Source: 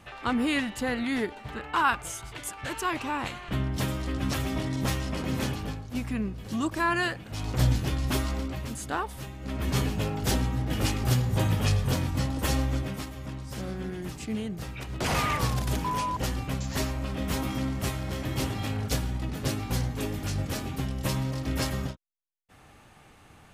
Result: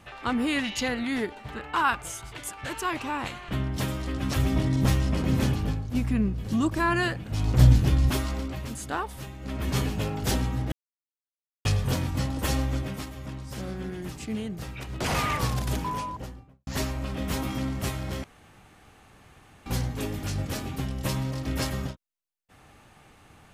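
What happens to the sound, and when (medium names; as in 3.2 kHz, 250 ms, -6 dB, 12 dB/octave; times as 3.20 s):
0.65–0.88 s: time-frequency box 2–7 kHz +11 dB
4.36–8.10 s: bass shelf 280 Hz +8.5 dB
10.72–11.65 s: mute
15.70–16.67 s: studio fade out
18.24–19.66 s: room tone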